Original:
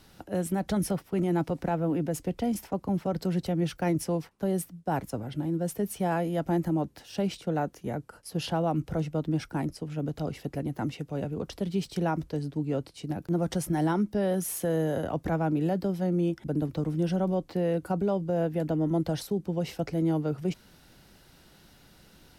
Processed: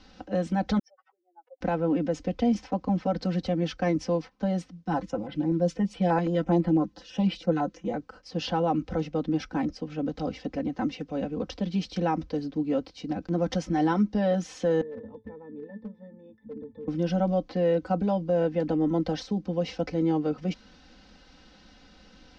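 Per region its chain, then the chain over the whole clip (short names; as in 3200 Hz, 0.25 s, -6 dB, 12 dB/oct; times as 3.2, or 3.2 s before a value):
0.79–1.61 spectral contrast raised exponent 3 + Bessel high-pass 1200 Hz, order 8 + air absorption 240 m
4.85–7.94 comb 5.9 ms, depth 59% + stepped notch 12 Hz 570–6300 Hz
14.81–16.88 bell 4200 Hz -7.5 dB 0.71 oct + octave resonator A, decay 0.16 s + hard clip -34.5 dBFS
whole clip: steep low-pass 6000 Hz 36 dB/oct; comb 3.9 ms, depth 90%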